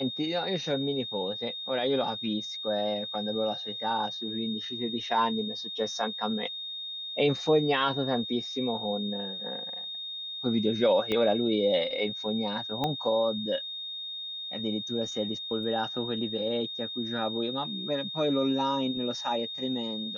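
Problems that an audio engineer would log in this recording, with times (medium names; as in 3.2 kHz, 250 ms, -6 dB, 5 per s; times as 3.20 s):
whine 3.7 kHz -35 dBFS
11.12 s: pop -17 dBFS
12.84 s: pop -16 dBFS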